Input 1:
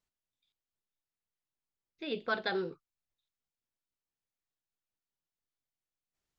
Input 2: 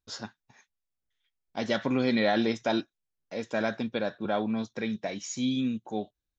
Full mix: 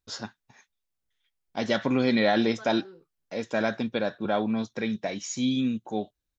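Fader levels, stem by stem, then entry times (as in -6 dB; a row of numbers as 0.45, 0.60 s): -13.5, +2.5 dB; 0.30, 0.00 s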